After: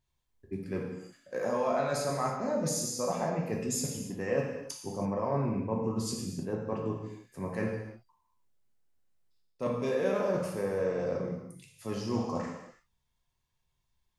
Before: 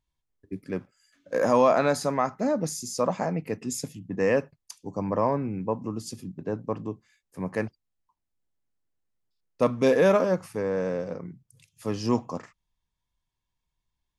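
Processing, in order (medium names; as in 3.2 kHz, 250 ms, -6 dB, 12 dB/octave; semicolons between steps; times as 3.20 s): reverse; compression 6:1, threshold -31 dBFS, peak gain reduction 14.5 dB; reverse; gated-style reverb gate 360 ms falling, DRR -1.5 dB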